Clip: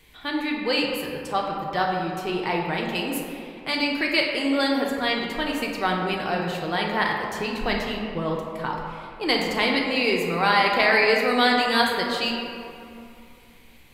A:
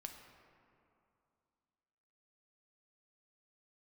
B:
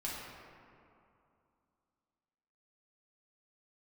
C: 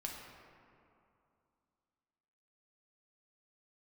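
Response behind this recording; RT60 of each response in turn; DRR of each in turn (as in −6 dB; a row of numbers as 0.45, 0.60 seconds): C; 2.6, 2.6, 2.6 seconds; 3.5, −6.5, −1.0 decibels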